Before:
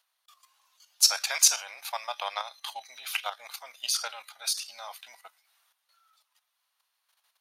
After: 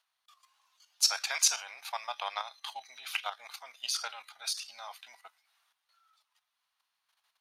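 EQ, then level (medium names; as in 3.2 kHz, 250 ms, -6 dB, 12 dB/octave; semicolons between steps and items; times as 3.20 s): peaking EQ 550 Hz -6 dB 0.36 oct; treble shelf 8.9 kHz -11 dB; -2.0 dB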